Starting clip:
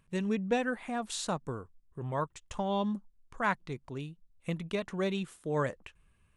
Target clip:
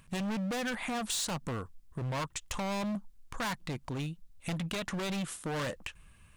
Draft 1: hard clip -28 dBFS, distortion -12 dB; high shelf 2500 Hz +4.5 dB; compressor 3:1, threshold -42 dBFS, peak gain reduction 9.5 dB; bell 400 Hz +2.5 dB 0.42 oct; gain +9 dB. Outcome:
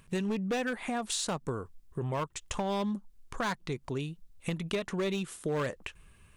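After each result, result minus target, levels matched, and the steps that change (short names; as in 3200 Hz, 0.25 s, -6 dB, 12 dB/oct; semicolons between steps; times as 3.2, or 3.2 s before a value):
hard clip: distortion -7 dB; 500 Hz band +3.5 dB
change: hard clip -37.5 dBFS, distortion -5 dB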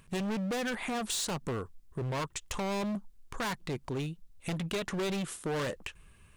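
500 Hz band +2.5 dB
change: bell 400 Hz -5.5 dB 0.42 oct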